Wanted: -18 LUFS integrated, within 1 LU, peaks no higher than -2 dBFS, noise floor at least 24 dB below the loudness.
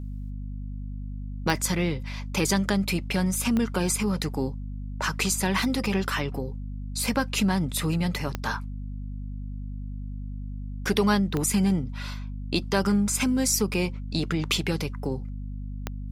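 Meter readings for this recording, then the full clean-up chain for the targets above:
clicks found 5; hum 50 Hz; highest harmonic 250 Hz; hum level -32 dBFS; loudness -26.5 LUFS; peak level -5.5 dBFS; loudness target -18.0 LUFS
-> de-click; de-hum 50 Hz, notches 5; trim +8.5 dB; peak limiter -2 dBFS

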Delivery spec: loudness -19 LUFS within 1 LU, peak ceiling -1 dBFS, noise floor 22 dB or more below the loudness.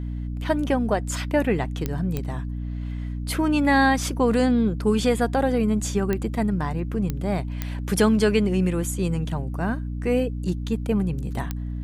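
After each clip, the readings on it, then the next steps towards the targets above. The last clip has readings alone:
clicks found 6; hum 60 Hz; highest harmonic 300 Hz; hum level -27 dBFS; loudness -24.0 LUFS; peak level -8.0 dBFS; loudness target -19.0 LUFS
-> de-click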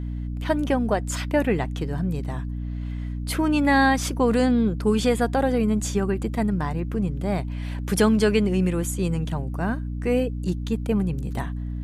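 clicks found 0; hum 60 Hz; highest harmonic 300 Hz; hum level -27 dBFS
-> de-hum 60 Hz, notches 5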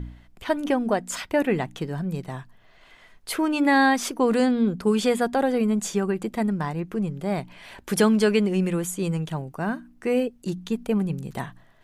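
hum not found; loudness -24.5 LUFS; peak level -8.5 dBFS; loudness target -19.0 LUFS
-> trim +5.5 dB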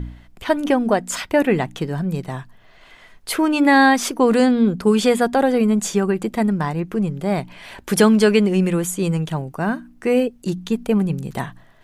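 loudness -19.0 LUFS; peak level -3.0 dBFS; noise floor -49 dBFS

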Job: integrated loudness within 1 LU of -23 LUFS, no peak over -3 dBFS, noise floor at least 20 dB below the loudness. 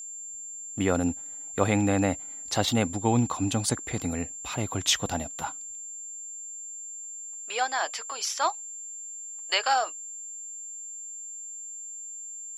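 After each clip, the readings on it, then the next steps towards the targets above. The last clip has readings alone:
steady tone 7.3 kHz; tone level -37 dBFS; loudness -29.5 LUFS; peak level -6.5 dBFS; loudness target -23.0 LUFS
-> band-stop 7.3 kHz, Q 30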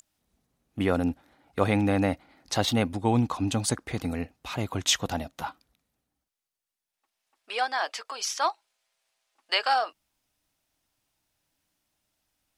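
steady tone not found; loudness -28.0 LUFS; peak level -6.5 dBFS; loudness target -23.0 LUFS
-> trim +5 dB; peak limiter -3 dBFS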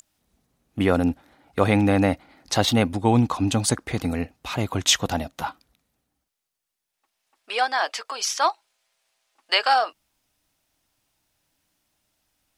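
loudness -23.0 LUFS; peak level -3.0 dBFS; noise floor -82 dBFS

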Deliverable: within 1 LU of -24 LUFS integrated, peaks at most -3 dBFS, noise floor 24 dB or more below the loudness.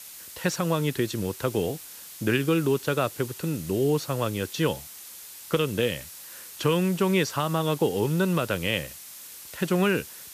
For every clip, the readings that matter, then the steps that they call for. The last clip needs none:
noise floor -44 dBFS; noise floor target -51 dBFS; loudness -26.5 LUFS; peak level -11.5 dBFS; loudness target -24.0 LUFS
-> noise print and reduce 7 dB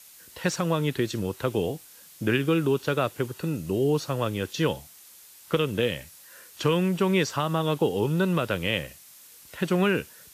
noise floor -51 dBFS; loudness -26.5 LUFS; peak level -11.5 dBFS; loudness target -24.0 LUFS
-> trim +2.5 dB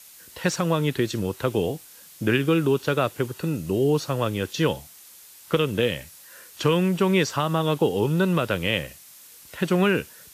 loudness -24.0 LUFS; peak level -9.0 dBFS; noise floor -48 dBFS

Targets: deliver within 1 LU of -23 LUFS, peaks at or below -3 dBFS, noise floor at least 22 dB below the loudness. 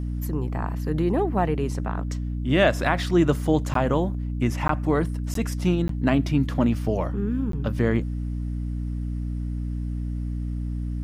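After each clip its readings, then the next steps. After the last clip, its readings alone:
dropouts 5; longest dropout 13 ms; hum 60 Hz; highest harmonic 300 Hz; hum level -26 dBFS; loudness -25.0 LUFS; peak level -6.5 dBFS; loudness target -23.0 LUFS
-> interpolate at 3.74/4.68/5.34/5.88/7.52 s, 13 ms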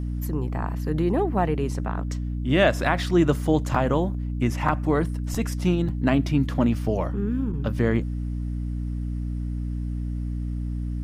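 dropouts 0; hum 60 Hz; highest harmonic 300 Hz; hum level -26 dBFS
-> hum notches 60/120/180/240/300 Hz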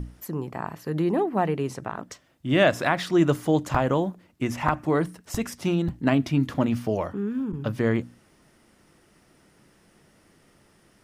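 hum not found; loudness -25.5 LUFS; peak level -7.0 dBFS; loudness target -23.0 LUFS
-> trim +2.5 dB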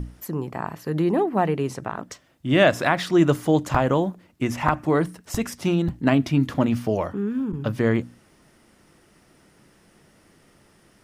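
loudness -23.0 LUFS; peak level -4.5 dBFS; noise floor -58 dBFS

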